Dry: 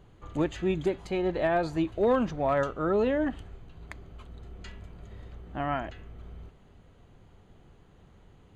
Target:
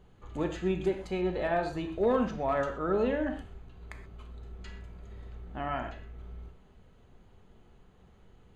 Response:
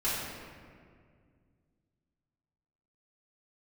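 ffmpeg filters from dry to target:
-filter_complex "[0:a]asplit=2[a][b];[1:a]atrim=start_sample=2205,atrim=end_sample=6174[c];[b][c]afir=irnorm=-1:irlink=0,volume=-9.5dB[d];[a][d]amix=inputs=2:normalize=0,volume=-5.5dB"

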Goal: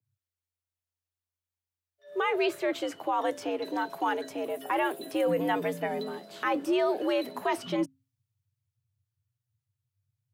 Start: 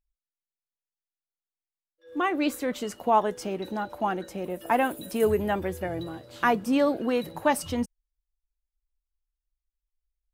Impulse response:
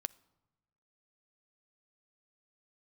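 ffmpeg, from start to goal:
-filter_complex "[0:a]acrossover=split=200|3600[a][b][c];[c]acompressor=threshold=-54dB:ratio=6[d];[a][b][d]amix=inputs=3:normalize=0,bandreject=f=60:t=h:w=6,bandreject=f=120:t=h:w=6,bandreject=f=180:t=h:w=6,afreqshift=87,alimiter=limit=-19.5dB:level=0:latency=1:release=17,adynamicequalizer=threshold=0.00891:dfrequency=2000:dqfactor=0.7:tfrequency=2000:tqfactor=0.7:attack=5:release=100:ratio=0.375:range=2.5:mode=boostabove:tftype=highshelf"

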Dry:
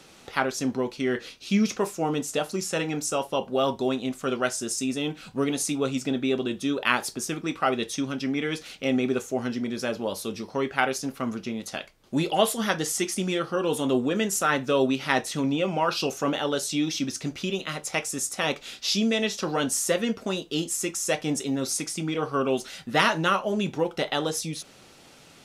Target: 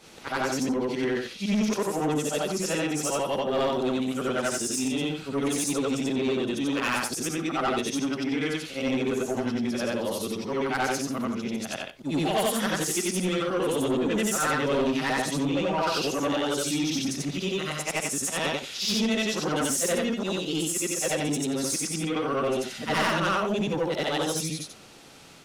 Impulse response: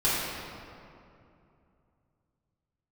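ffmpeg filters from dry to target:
-af "afftfilt=real='re':imag='-im':win_size=8192:overlap=0.75,asoftclip=type=tanh:threshold=-26.5dB,volume=6.5dB"

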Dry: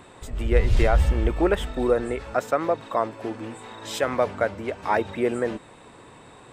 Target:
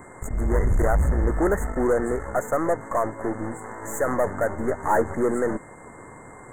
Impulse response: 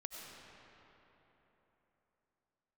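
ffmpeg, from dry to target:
-filter_complex "[0:a]asoftclip=type=tanh:threshold=-20dB,aeval=exprs='0.1*(cos(1*acos(clip(val(0)/0.1,-1,1)))-cos(1*PI/2))+0.0112*(cos(8*acos(clip(val(0)/0.1,-1,1)))-cos(8*PI/2))':c=same,asettb=1/sr,asplit=3[a][b][c];[a]atrim=end=4.494[d];[b]atrim=start=4.49:end=5.14,asetpts=PTS-STARTPTS,afade=t=in:d=0.004:c=qsin,afade=t=out:st=0.646:d=0.004:c=qsin,asplit=2[e][f];[f]adelay=13,volume=-4dB[g];[e][g]amix=inputs=2:normalize=0,atrim=end_sample=28665[h];[c]atrim=start=5.136[i];[d][h]acrossfade=d=0.004:c1=hsin:c2=qsin[j];[j][i]acrossfade=d=0.004:c1=qsin:c2=hsin,aeval=exprs='val(0)+0.00631*sin(2*PI*2100*n/s)':c=same,asuperstop=centerf=3600:order=20:qfactor=0.8,volume=4dB"

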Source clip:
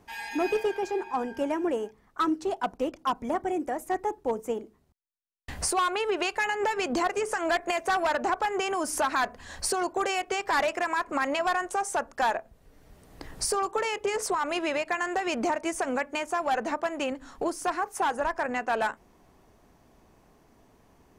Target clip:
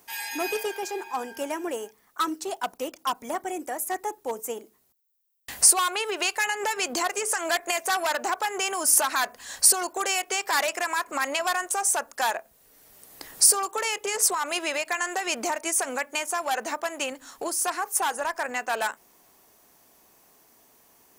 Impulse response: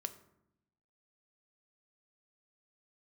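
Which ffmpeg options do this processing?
-af "aemphasis=mode=production:type=riaa"

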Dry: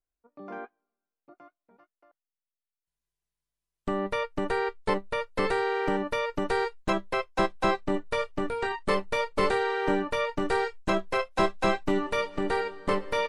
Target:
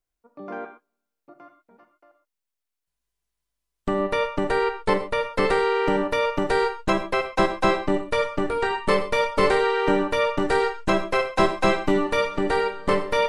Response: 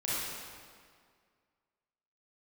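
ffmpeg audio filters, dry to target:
-filter_complex "[0:a]asplit=2[a][b];[1:a]atrim=start_sample=2205,atrim=end_sample=6174[c];[b][c]afir=irnorm=-1:irlink=0,volume=-11.5dB[d];[a][d]amix=inputs=2:normalize=0,volume=3.5dB"

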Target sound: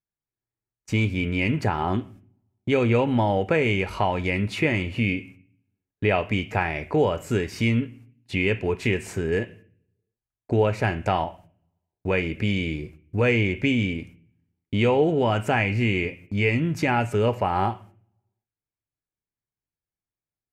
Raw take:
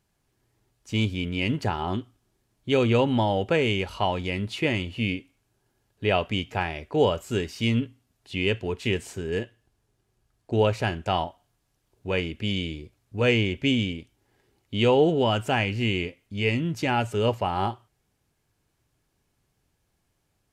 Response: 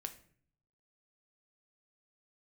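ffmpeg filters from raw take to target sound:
-filter_complex "[0:a]agate=range=-32dB:threshold=-51dB:ratio=16:detection=peak,acompressor=threshold=-32dB:ratio=2,asplit=2[a][b];[b]lowpass=f=2.4k:t=q:w=2.9[c];[1:a]atrim=start_sample=2205[d];[c][d]afir=irnorm=-1:irlink=0,volume=-2.5dB[e];[a][e]amix=inputs=2:normalize=0,volume=4.5dB"

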